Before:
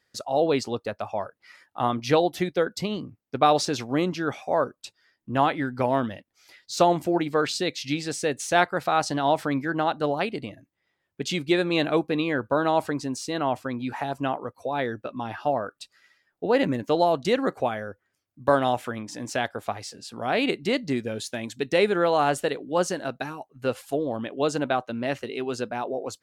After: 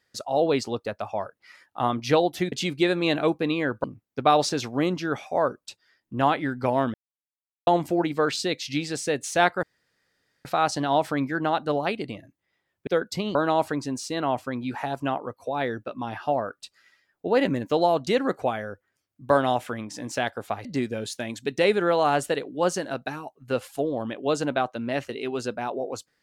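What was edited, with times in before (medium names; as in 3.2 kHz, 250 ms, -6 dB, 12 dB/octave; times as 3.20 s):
2.52–3.00 s: swap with 11.21–12.53 s
6.10–6.83 s: mute
8.79 s: insert room tone 0.82 s
19.83–20.79 s: delete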